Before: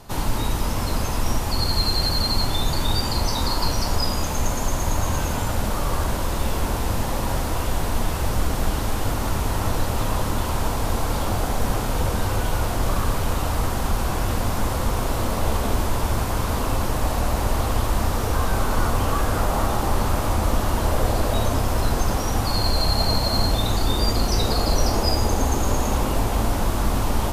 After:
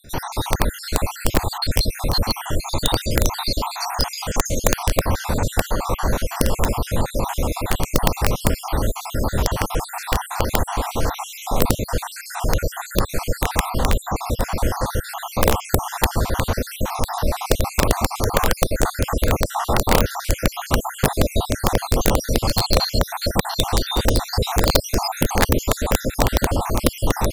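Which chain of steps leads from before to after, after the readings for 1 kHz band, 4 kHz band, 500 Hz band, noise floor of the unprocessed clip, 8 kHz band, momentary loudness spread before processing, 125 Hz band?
+1.5 dB, +1.0 dB, +4.0 dB, -25 dBFS, +3.5 dB, 4 LU, 0.0 dB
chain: random spectral dropouts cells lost 62%; wrapped overs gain 12.5 dB; dynamic EQ 520 Hz, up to +4 dB, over -44 dBFS, Q 3.2; gain +4.5 dB

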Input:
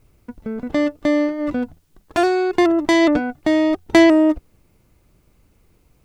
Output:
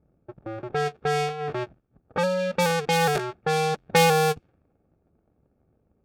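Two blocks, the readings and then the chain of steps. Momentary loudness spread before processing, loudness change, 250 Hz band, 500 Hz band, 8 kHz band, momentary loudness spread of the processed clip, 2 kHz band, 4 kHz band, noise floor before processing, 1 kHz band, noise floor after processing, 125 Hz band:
15 LU, -7.0 dB, -17.5 dB, -5.5 dB, +4.0 dB, 15 LU, -4.0 dB, -0.5 dB, -59 dBFS, +0.5 dB, -70 dBFS, +11.5 dB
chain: cycle switcher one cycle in 2, inverted; low-pass opened by the level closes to 870 Hz, open at -10.5 dBFS; notch comb 1000 Hz; gain -6.5 dB

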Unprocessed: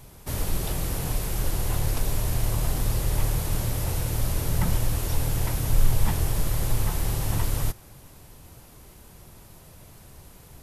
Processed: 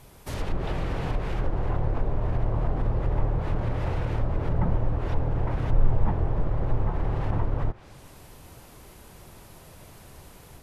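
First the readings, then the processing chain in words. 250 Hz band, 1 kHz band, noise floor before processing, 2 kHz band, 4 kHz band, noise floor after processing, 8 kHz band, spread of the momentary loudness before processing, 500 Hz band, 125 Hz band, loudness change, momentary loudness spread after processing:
+1.0 dB, +2.0 dB, -50 dBFS, -3.0 dB, under -10 dB, -50 dBFS, under -20 dB, 3 LU, +3.0 dB, -0.5 dB, -1.0 dB, 21 LU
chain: tone controls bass -4 dB, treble -4 dB; AGC gain up to 3.5 dB; treble ducked by the level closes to 1000 Hz, closed at -19.5 dBFS

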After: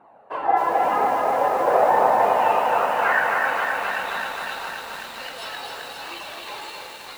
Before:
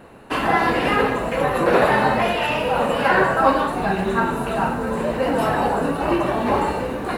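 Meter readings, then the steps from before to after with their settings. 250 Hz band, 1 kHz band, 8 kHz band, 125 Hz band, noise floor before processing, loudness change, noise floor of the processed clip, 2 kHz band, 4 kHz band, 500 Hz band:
-16.0 dB, 0.0 dB, -2.0 dB, under -15 dB, -27 dBFS, -1.0 dB, -40 dBFS, -2.0 dB, -3.5 dB, -4.0 dB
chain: high shelf 11000 Hz +6.5 dB; AGC gain up to 5 dB; flange 0.98 Hz, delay 0.8 ms, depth 1.7 ms, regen -28%; band-pass sweep 760 Hz -> 4000 Hz, 1.98–4.35; lo-fi delay 0.263 s, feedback 80%, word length 8-bit, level -3 dB; gain +3.5 dB

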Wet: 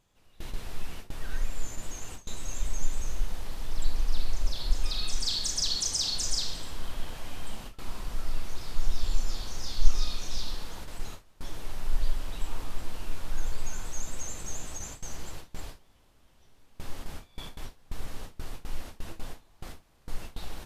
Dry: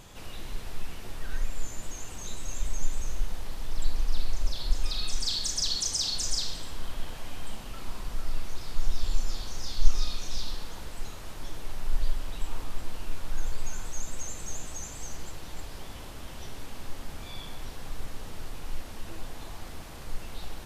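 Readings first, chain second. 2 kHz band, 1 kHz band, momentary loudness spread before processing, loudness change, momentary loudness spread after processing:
-0.5 dB, -1.0 dB, 15 LU, +0.5 dB, 17 LU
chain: gate with hold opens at -26 dBFS

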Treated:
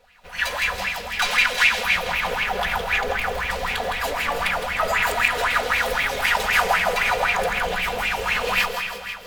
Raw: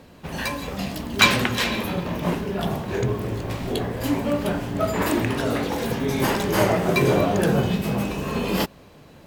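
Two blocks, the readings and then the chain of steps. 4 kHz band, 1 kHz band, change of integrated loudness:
+3.0 dB, +5.0 dB, +2.0 dB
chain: minimum comb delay 4.1 ms; high shelf 4000 Hz -8 dB; notch 1100 Hz, Q 11; AGC gain up to 14 dB; limiter -8 dBFS, peak gain reduction 7 dB; passive tone stack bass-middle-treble 10-0-10; notches 50/100/150/200 Hz; thinning echo 0.162 s, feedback 64%, high-pass 610 Hz, level -5.5 dB; digital reverb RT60 2.6 s, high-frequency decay 0.6×, pre-delay 80 ms, DRR 8 dB; LFO bell 3.9 Hz 440–2500 Hz +17 dB; gain -1.5 dB

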